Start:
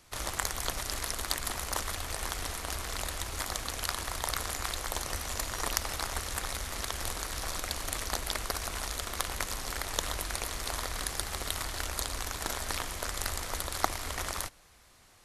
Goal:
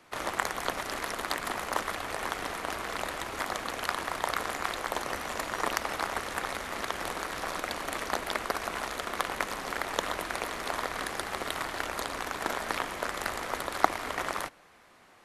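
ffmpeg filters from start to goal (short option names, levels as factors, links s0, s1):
-filter_complex "[0:a]acrossover=split=160 2800:gain=0.112 1 0.224[s0][s1][s2];[s0][s1][s2]amix=inputs=3:normalize=0,volume=2"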